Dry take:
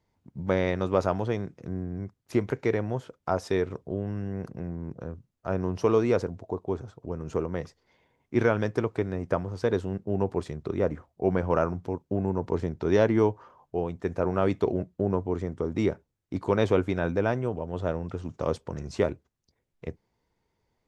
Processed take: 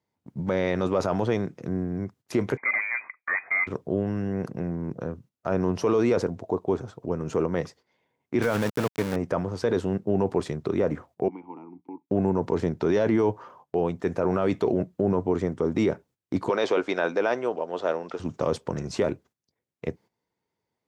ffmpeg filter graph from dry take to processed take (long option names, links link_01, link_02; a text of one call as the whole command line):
ffmpeg -i in.wav -filter_complex "[0:a]asettb=1/sr,asplit=3[link_01][link_02][link_03];[link_01]atrim=end=2.574[link_04];[link_02]atrim=start=2.57:end=3.67,asetpts=PTS-STARTPTS,afade=type=in:duration=0.004:curve=qsin,afade=type=out:start_time=1.096:duration=0.004:curve=qsin,lowshelf=frequency=200:gain=-11,asoftclip=type=hard:threshold=-27.5dB,lowpass=frequency=2100:width_type=q:width=0.5098,lowpass=frequency=2100:width_type=q:width=0.6013,lowpass=frequency=2100:width_type=q:width=0.9,lowpass=frequency=2100:width_type=q:width=2.563,afreqshift=-2500[link_05];[link_03]atrim=start=3.666[link_06];[link_04][link_05]acrossfade=duration=0.004:curve1=hsin:curve2=qsin[link_07];[link_07][link_06]acrossfade=duration=0.004:curve1=qsin:curve2=hsin,asettb=1/sr,asplit=3[link_08][link_09][link_10];[link_08]atrim=end=8.424[link_11];[link_09]atrim=start=8.42:end=9.16,asetpts=PTS-STARTPTS,afade=type=in:duration=0.004:curve=qsin,afade=type=out:start_time=0.736:duration=0.004:curve=qsin,equalizer=frequency=370:width_type=o:width=0.25:gain=-9.5,aeval=exprs='val(0)*gte(abs(val(0)),0.0237)':channel_layout=same[link_12];[link_10]atrim=start=9.156[link_13];[link_11][link_12]acrossfade=duration=0.004:curve1=hsin:curve2=qsin[link_14];[link_14][link_13]acrossfade=duration=0.004:curve1=qsin:curve2=hsin,asettb=1/sr,asplit=3[link_15][link_16][link_17];[link_15]atrim=end=11.284[link_18];[link_16]atrim=start=11.28:end=12.1,asetpts=PTS-STARTPTS,afade=type=in:duration=0.004:curve=qsin,afade=type=out:start_time=0.816:duration=0.004:curve=qsin,acrossover=split=190|600[link_19][link_20][link_21];[link_19]acompressor=threshold=-39dB:ratio=4[link_22];[link_20]acompressor=threshold=-36dB:ratio=4[link_23];[link_21]acompressor=threshold=-39dB:ratio=4[link_24];[link_22][link_23][link_24]amix=inputs=3:normalize=0,asplit=3[link_25][link_26][link_27];[link_25]bandpass=frequency=300:width_type=q:width=8,volume=0dB[link_28];[link_26]bandpass=frequency=870:width_type=q:width=8,volume=-6dB[link_29];[link_27]bandpass=frequency=2240:width_type=q:width=8,volume=-9dB[link_30];[link_28][link_29][link_30]amix=inputs=3:normalize=0,equalizer=frequency=71:width_type=o:width=0.74:gain=-8.5[link_31];[link_17]atrim=start=12.096[link_32];[link_18][link_31]acrossfade=duration=0.004:curve1=hsin:curve2=qsin[link_33];[link_33][link_32]acrossfade=duration=0.004:curve1=qsin:curve2=hsin,asettb=1/sr,asplit=3[link_34][link_35][link_36];[link_34]atrim=end=16.494[link_37];[link_35]atrim=start=16.49:end=18.2,asetpts=PTS-STARTPTS,afade=type=in:duration=0.004:curve=qsin,afade=type=out:start_time=1.706:duration=0.004:curve=qsin,highpass=420,lowpass=6500,equalizer=frequency=4900:width=1.5:gain=4.5[link_38];[link_36]atrim=start=18.196[link_39];[link_37][link_38]acrossfade=duration=0.004:curve1=hsin:curve2=qsin[link_40];[link_40][link_39]acrossfade=duration=0.004:curve1=qsin:curve2=hsin,highpass=130,agate=range=-12dB:threshold=-55dB:ratio=16:detection=peak,alimiter=limit=-20.5dB:level=0:latency=1:release=14,volume=6.5dB" out.wav